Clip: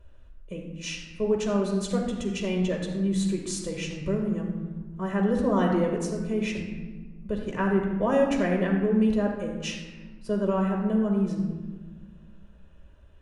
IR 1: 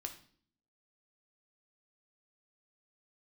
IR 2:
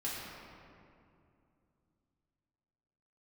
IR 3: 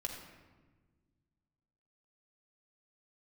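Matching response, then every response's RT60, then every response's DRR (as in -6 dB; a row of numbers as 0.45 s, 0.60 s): 3; 0.50 s, 2.6 s, 1.4 s; 4.0 dB, -8.0 dB, 0.0 dB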